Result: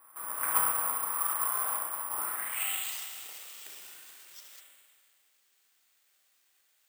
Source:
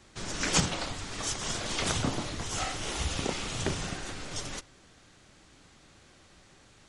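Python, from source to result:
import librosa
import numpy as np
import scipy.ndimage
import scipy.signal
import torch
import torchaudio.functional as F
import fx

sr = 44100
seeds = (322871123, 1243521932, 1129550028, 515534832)

y = scipy.signal.sosfilt(scipy.signal.ellip(4, 1.0, 40, 8200.0, 'lowpass', fs=sr, output='sos'), x)
y = fx.bass_treble(y, sr, bass_db=-7, treble_db=-14)
y = fx.over_compress(y, sr, threshold_db=-39.0, ratio=-0.5, at=(0.68, 2.12))
y = fx.filter_sweep_bandpass(y, sr, from_hz=1100.0, to_hz=6400.0, start_s=2.15, end_s=3.09, q=4.7)
y = fx.rev_spring(y, sr, rt60_s=1.9, pass_ms=(32, 54), chirp_ms=70, drr_db=-1.0)
y = (np.kron(scipy.signal.resample_poly(y, 1, 4), np.eye(4)[0]) * 4)[:len(y)]
y = y * librosa.db_to_amplitude(7.0)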